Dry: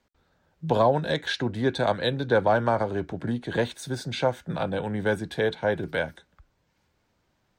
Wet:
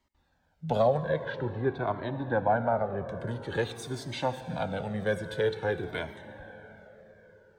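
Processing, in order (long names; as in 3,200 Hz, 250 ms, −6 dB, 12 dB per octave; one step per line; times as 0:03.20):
0:00.97–0:03.09: low-pass filter 1,600 Hz 12 dB per octave
convolution reverb RT60 4.5 s, pre-delay 53 ms, DRR 10.5 dB
flanger whose copies keep moving one way falling 0.49 Hz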